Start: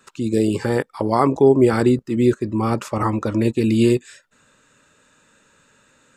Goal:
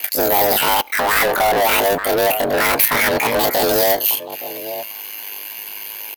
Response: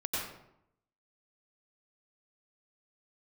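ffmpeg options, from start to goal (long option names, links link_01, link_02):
-filter_complex "[0:a]acrossover=split=320[link_01][link_02];[link_01]acompressor=threshold=-22dB:ratio=2.5[link_03];[link_03][link_02]amix=inputs=2:normalize=0,aeval=exprs='val(0)*sin(2*PI*30*n/s)':channel_layout=same,asplit=2[link_04][link_05];[link_05]adelay=874.6,volume=-26dB,highshelf=frequency=4000:gain=-19.7[link_06];[link_04][link_06]amix=inputs=2:normalize=0,asplit=2[link_07][link_08];[link_08]highpass=frequency=720:poles=1,volume=38dB,asoftclip=type=tanh:threshold=-3.5dB[link_09];[link_07][link_09]amix=inputs=2:normalize=0,lowpass=frequency=5300:poles=1,volume=-6dB,aexciter=amount=6.7:drive=5.3:freq=6300,asplit=2[link_10][link_11];[1:a]atrim=start_sample=2205,atrim=end_sample=4410[link_12];[link_11][link_12]afir=irnorm=-1:irlink=0,volume=-27.5dB[link_13];[link_10][link_13]amix=inputs=2:normalize=0,asetrate=76340,aresample=44100,atempo=0.577676,volume=-5.5dB"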